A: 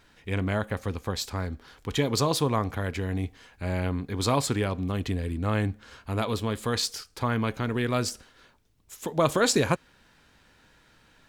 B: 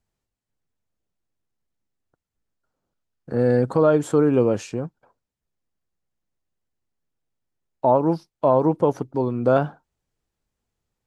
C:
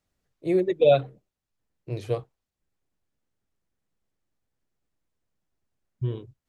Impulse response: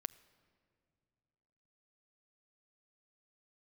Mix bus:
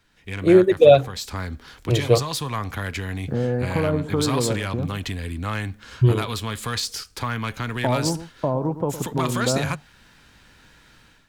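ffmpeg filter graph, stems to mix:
-filter_complex "[0:a]equalizer=f=580:t=o:w=1.9:g=-4.5,acrossover=split=150|780[s0][s1][s2];[s0]acompressor=threshold=0.0112:ratio=4[s3];[s1]acompressor=threshold=0.00891:ratio=4[s4];[s2]acompressor=threshold=0.0282:ratio=4[s5];[s3][s4][s5]amix=inputs=3:normalize=0,asoftclip=type=tanh:threshold=0.0631,volume=0.631[s6];[1:a]bass=f=250:g=12,treble=f=4000:g=-12,acrossover=split=580|1900[s7][s8][s9];[s7]acompressor=threshold=0.0631:ratio=4[s10];[s8]acompressor=threshold=0.0447:ratio=4[s11];[s9]acompressor=threshold=0.00158:ratio=4[s12];[s10][s11][s12]amix=inputs=3:normalize=0,volume=0.237,asplit=2[s13][s14];[s14]volume=0.224[s15];[2:a]volume=1[s16];[s15]aecho=0:1:111:1[s17];[s6][s13][s16][s17]amix=inputs=4:normalize=0,dynaudnorm=f=110:g=5:m=3.98"

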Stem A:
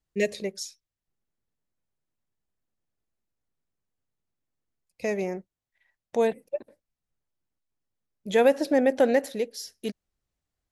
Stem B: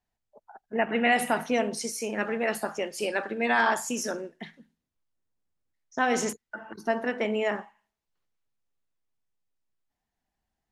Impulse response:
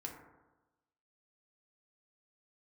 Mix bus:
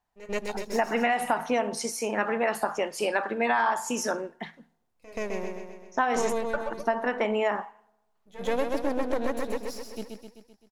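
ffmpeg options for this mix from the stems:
-filter_complex "[0:a]aeval=exprs='if(lt(val(0),0),0.251*val(0),val(0))':c=same,volume=1.06,asplit=3[s0][s1][s2];[s1]volume=0.126[s3];[s2]volume=0.708[s4];[1:a]equalizer=f=970:t=o:w=1.2:g=10,volume=1,asplit=3[s5][s6][s7];[s6]volume=0.0891[s8];[s7]apad=whole_len=472392[s9];[s0][s9]sidechaingate=range=0.0224:threshold=0.0112:ratio=16:detection=peak[s10];[2:a]atrim=start_sample=2205[s11];[s3][s8]amix=inputs=2:normalize=0[s12];[s12][s11]afir=irnorm=-1:irlink=0[s13];[s4]aecho=0:1:129|258|387|516|645|774|903|1032:1|0.56|0.314|0.176|0.0983|0.0551|0.0308|0.0173[s14];[s10][s5][s13][s14]amix=inputs=4:normalize=0,acompressor=threshold=0.0891:ratio=6"

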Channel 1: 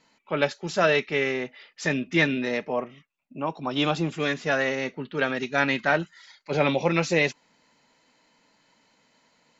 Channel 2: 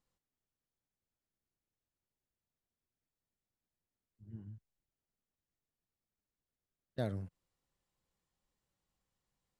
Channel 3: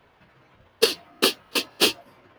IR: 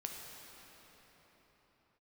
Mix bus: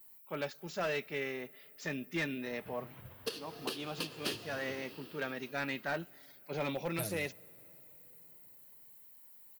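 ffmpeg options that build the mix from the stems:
-filter_complex "[0:a]asoftclip=type=hard:threshold=0.158,volume=0.224,asplit=2[s0][s1];[s1]volume=0.0794[s2];[1:a]aemphasis=mode=production:type=75fm,aecho=1:1:6.3:0.72,aexciter=amount=9.1:drive=3.9:freq=8100,volume=0.596,asplit=2[s3][s4];[s4]volume=0.15[s5];[2:a]equalizer=f=130:t=o:w=0.99:g=11,acompressor=threshold=0.0631:ratio=12,adelay=2450,volume=0.631,asplit=2[s6][s7];[s7]volume=0.501[s8];[3:a]atrim=start_sample=2205[s9];[s2][s5][s8]amix=inputs=3:normalize=0[s10];[s10][s9]afir=irnorm=-1:irlink=0[s11];[s0][s3][s6][s11]amix=inputs=4:normalize=0,alimiter=limit=0.0708:level=0:latency=1:release=437"

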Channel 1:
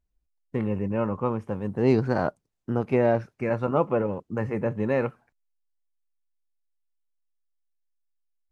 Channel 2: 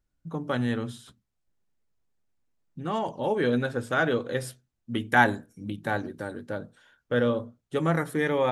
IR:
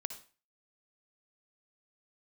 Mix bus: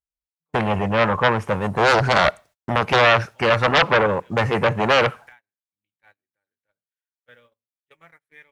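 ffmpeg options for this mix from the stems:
-filter_complex "[0:a]aeval=exprs='0.355*sin(PI/2*4.47*val(0)/0.355)':c=same,volume=1.19,asplit=3[s0][s1][s2];[s1]volume=0.0944[s3];[1:a]equalizer=f=2300:w=2.2:g=14.5,acompressor=threshold=0.0631:ratio=4,adelay=150,volume=0.126,asplit=2[s4][s5];[s5]volume=0.211[s6];[s2]apad=whole_len=382279[s7];[s4][s7]sidechaincompress=threshold=0.1:ratio=4:attack=16:release=1350[s8];[2:a]atrim=start_sample=2205[s9];[s3][s6]amix=inputs=2:normalize=0[s10];[s10][s9]afir=irnorm=-1:irlink=0[s11];[s0][s8][s11]amix=inputs=3:normalize=0,highpass=f=150:p=1,agate=range=0.0316:threshold=0.00708:ratio=16:detection=peak,equalizer=f=260:t=o:w=1.8:g=-13"

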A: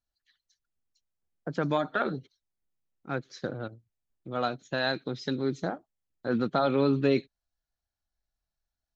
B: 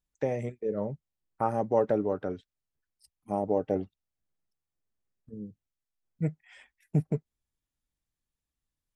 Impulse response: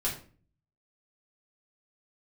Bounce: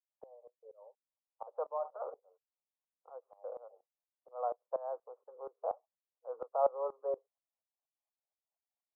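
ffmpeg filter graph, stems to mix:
-filter_complex "[0:a]volume=1.26,asplit=2[s0][s1];[1:a]highpass=f=670:p=1,volume=0.398[s2];[s1]apad=whole_len=394843[s3];[s2][s3]sidechaincompress=threshold=0.00355:ratio=10:attack=8.2:release=157[s4];[s0][s4]amix=inputs=2:normalize=0,asuperpass=centerf=740:order=12:qfactor=1.1,aeval=exprs='val(0)*pow(10,-19*if(lt(mod(-4.2*n/s,1),2*abs(-4.2)/1000),1-mod(-4.2*n/s,1)/(2*abs(-4.2)/1000),(mod(-4.2*n/s,1)-2*abs(-4.2)/1000)/(1-2*abs(-4.2)/1000))/20)':c=same"

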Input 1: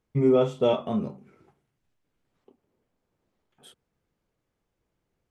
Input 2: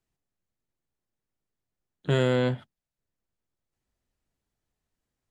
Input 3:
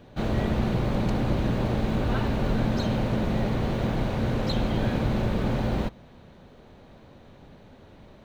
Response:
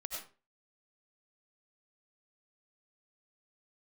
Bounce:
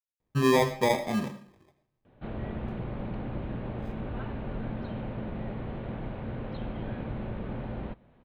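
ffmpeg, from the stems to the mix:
-filter_complex "[0:a]bandreject=f=430:w=12,acrusher=samples=31:mix=1:aa=0.000001,adelay=200,volume=0.668,asplit=2[s0][s1];[s1]volume=0.376[s2];[2:a]lowpass=f=3200:w=0.5412,lowpass=f=3200:w=1.3066,adelay=2050,volume=0.316[s3];[3:a]atrim=start_sample=2205[s4];[s2][s4]afir=irnorm=-1:irlink=0[s5];[s0][s3][s5]amix=inputs=3:normalize=0,highshelf=f=4900:g=-8"

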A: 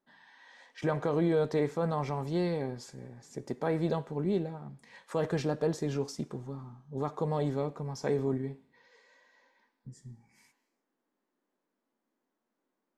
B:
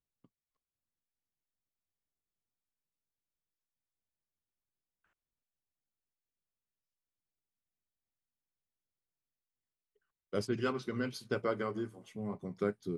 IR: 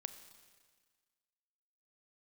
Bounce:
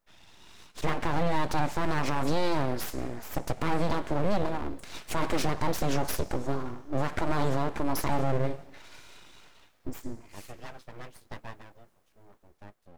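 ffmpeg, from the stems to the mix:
-filter_complex "[0:a]highshelf=f=5000:g=4.5,dynaudnorm=f=510:g=5:m=2.82,volume=1.33,asplit=3[s0][s1][s2];[s1]volume=0.447[s3];[1:a]aeval=exprs='if(lt(val(0),0),0.708*val(0),val(0))':c=same,volume=0.631,afade=t=out:st=11.38:d=0.33:silence=0.334965[s4];[s2]apad=whole_len=572120[s5];[s4][s5]sidechaincompress=threshold=0.0126:ratio=8:attack=16:release=1320[s6];[2:a]atrim=start_sample=2205[s7];[s3][s7]afir=irnorm=-1:irlink=0[s8];[s0][s6][s8]amix=inputs=3:normalize=0,aeval=exprs='abs(val(0))':c=same,alimiter=limit=0.168:level=0:latency=1:release=145"

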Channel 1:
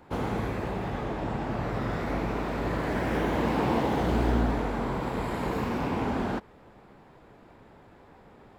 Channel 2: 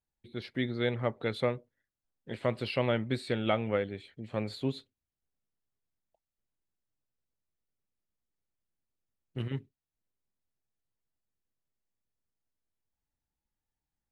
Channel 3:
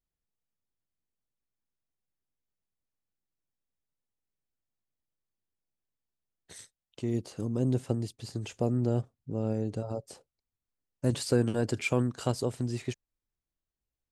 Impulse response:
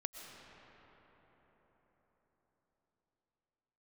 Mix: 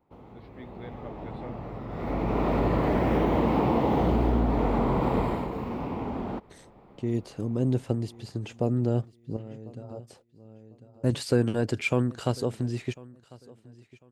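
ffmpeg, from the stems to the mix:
-filter_complex "[0:a]acompressor=threshold=0.0398:ratio=6,equalizer=f=1600:t=o:w=0.34:g=-10.5,dynaudnorm=f=240:g=7:m=3.98,volume=0.668,afade=t=in:st=1.88:d=0.56:silence=0.223872,afade=t=out:st=5.19:d=0.28:silence=0.375837[s0];[1:a]volume=0.211,asplit=2[s1][s2];[2:a]agate=range=0.0224:threshold=0.00224:ratio=3:detection=peak,adynamicequalizer=threshold=0.00447:dfrequency=1800:dqfactor=0.7:tfrequency=1800:tqfactor=0.7:attack=5:release=100:ratio=0.375:range=3.5:mode=boostabove:tftype=highshelf,volume=1.33,asplit=2[s3][s4];[s4]volume=0.0794[s5];[s2]apad=whole_len=622672[s6];[s3][s6]sidechaincompress=threshold=0.00158:ratio=16:attack=12:release=741[s7];[s5]aecho=0:1:1048|2096|3144|4192:1|0.26|0.0676|0.0176[s8];[s0][s1][s7][s8]amix=inputs=4:normalize=0,equalizer=f=8400:w=0.4:g=-12.5"

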